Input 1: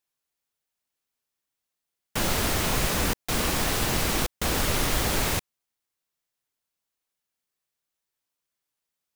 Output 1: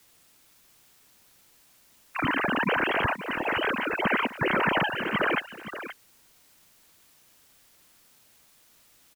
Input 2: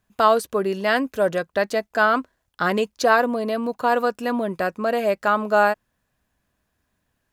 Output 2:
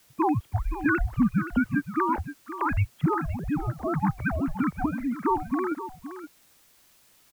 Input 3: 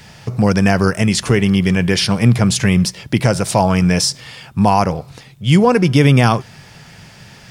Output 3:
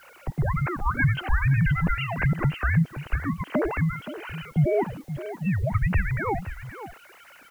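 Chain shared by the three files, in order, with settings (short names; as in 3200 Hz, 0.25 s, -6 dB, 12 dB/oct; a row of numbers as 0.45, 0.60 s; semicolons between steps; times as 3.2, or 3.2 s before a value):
sine-wave speech; dynamic EQ 1900 Hz, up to +6 dB, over -41 dBFS, Q 6; compressor 5:1, threshold -19 dBFS; random-step tremolo; requantised 10-bit, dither triangular; frequency shift -350 Hz; echo 0.522 s -12 dB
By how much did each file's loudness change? -1.0, -6.0, -11.5 LU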